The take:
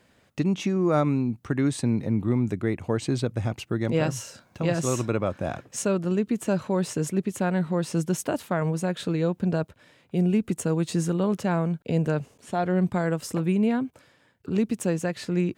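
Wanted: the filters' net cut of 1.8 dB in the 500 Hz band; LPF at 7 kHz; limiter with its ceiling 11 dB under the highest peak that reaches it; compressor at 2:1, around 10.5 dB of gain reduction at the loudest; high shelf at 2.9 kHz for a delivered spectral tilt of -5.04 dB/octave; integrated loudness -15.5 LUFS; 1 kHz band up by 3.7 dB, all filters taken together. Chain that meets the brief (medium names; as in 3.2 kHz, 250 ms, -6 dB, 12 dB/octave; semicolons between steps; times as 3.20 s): low-pass 7 kHz; peaking EQ 500 Hz -4 dB; peaking EQ 1 kHz +6 dB; treble shelf 2.9 kHz +5.5 dB; compression 2:1, threshold -39 dBFS; trim +25.5 dB; peak limiter -6 dBFS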